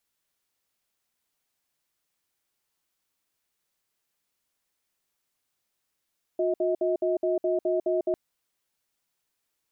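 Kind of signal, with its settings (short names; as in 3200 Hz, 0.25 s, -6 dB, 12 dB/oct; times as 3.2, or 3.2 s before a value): cadence 360 Hz, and 636 Hz, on 0.15 s, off 0.06 s, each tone -25 dBFS 1.75 s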